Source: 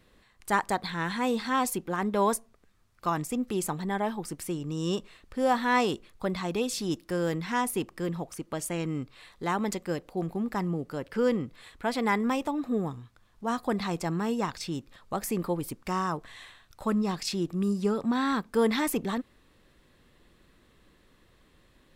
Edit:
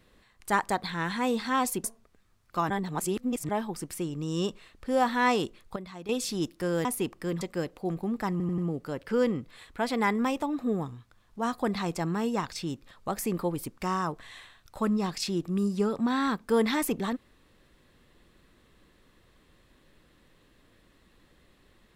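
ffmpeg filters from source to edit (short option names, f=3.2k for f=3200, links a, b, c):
-filter_complex "[0:a]asplit=11[a][b][c][d][e][f][g][h][i][j][k];[a]atrim=end=1.842[l];[b]atrim=start=2.328:end=3.192[m];[c]atrim=start=3.188:end=3.982,asetpts=PTS-STARTPTS,areverse[n];[d]atrim=start=3.978:end=6.252[o];[e]atrim=start=6.248:end=6.582,asetpts=PTS-STARTPTS,volume=-11dB[p];[f]atrim=start=6.578:end=7.342[q];[g]atrim=start=7.608:end=8.172[r];[h]atrim=start=9.728:end=10.722[s];[i]atrim=start=10.628:end=10.722[t];[j]atrim=start=10.628:end=10.722[u];[k]atrim=start=10.628[v];[l][m]acrossfade=d=0.004:c1=hsin:c2=hsin[w];[w][n]acrossfade=d=0.004:c1=hsin:c2=hsin[x];[x][o]acrossfade=d=0.004:c1=hsin:c2=hsin[y];[y][p]acrossfade=d=0.004:c1=hsin:c2=hsin[z];[z][q]acrossfade=d=0.004:c1=hsin:c2=hsin[aa];[aa][r]acrossfade=d=0.004:c1=hsin:c2=hsin[ab];[ab][s]acrossfade=d=0.004:c1=hsin:c2=hsin[ac];[ac][t]acrossfade=d=0.004:c1=hsin:c2=hsin[ad];[ad][u]acrossfade=d=0.004:c1=hsin:c2=hsin[ae];[ae][v]acrossfade=d=0.004:c1=hsin:c2=hsin"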